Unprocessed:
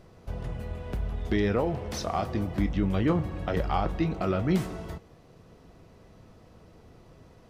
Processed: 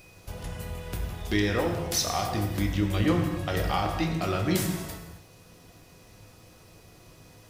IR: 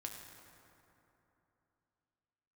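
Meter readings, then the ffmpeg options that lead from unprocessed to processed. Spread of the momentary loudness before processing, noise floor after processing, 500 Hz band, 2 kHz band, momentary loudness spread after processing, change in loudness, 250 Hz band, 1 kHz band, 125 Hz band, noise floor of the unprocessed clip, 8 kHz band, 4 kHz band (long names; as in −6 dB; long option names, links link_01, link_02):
11 LU, −54 dBFS, −0.5 dB, +5.0 dB, 14 LU, +1.0 dB, 0.0 dB, +1.0 dB, +1.0 dB, −55 dBFS, +13.0 dB, +9.0 dB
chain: -filter_complex "[0:a]aeval=exprs='val(0)+0.00126*sin(2*PI*2500*n/s)':channel_layout=same,crystalizer=i=6:c=0[link_01];[1:a]atrim=start_sample=2205,afade=type=out:start_time=0.32:duration=0.01,atrim=end_sample=14553[link_02];[link_01][link_02]afir=irnorm=-1:irlink=0,volume=1.5dB"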